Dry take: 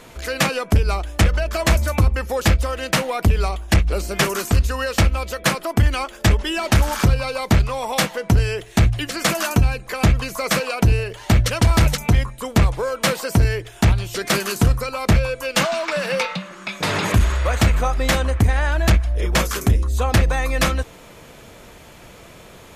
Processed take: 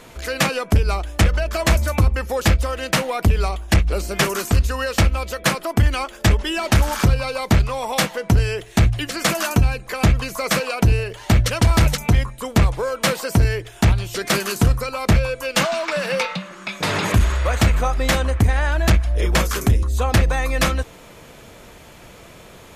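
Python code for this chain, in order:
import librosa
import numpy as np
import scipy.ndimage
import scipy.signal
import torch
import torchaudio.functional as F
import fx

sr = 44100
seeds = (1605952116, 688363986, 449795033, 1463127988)

y = fx.band_squash(x, sr, depth_pct=40, at=(18.89, 19.83))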